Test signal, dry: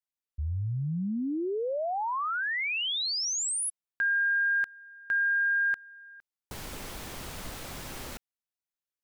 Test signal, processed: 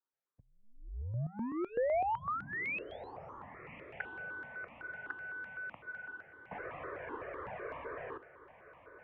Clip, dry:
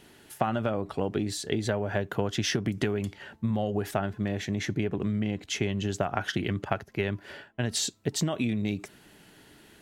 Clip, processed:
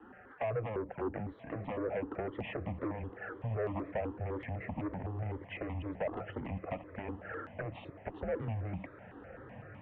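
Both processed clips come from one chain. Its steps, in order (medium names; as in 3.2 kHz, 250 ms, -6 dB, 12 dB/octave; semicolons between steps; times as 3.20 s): one-sided wavefolder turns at -23 dBFS; touch-sensitive flanger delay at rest 7.7 ms, full sweep at -30 dBFS; in parallel at +1 dB: compression, threshold -43 dBFS; on the sum: three-band isolator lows -16 dB, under 240 Hz, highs -23 dB, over 2.1 kHz; saturation -32 dBFS; on a send: echo that smears into a reverb 1144 ms, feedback 57%, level -14.5 dB; on the sum: mistuned SSB -110 Hz 190–2800 Hz; stepped phaser 7.9 Hz 610–1500 Hz; trim +4.5 dB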